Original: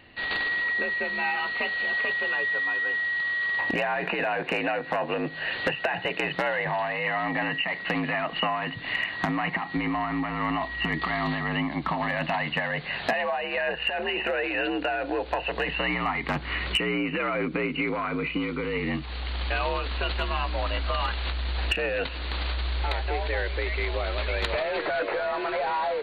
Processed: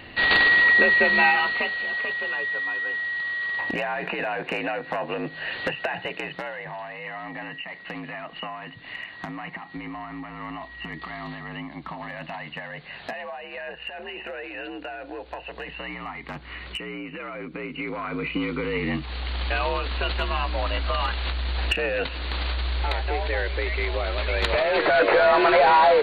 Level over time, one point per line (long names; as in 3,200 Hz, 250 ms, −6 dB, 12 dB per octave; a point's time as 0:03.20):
0:01.20 +10 dB
0:01.83 −1 dB
0:05.92 −1 dB
0:06.56 −8 dB
0:17.45 −8 dB
0:18.43 +2 dB
0:24.22 +2 dB
0:25.24 +11 dB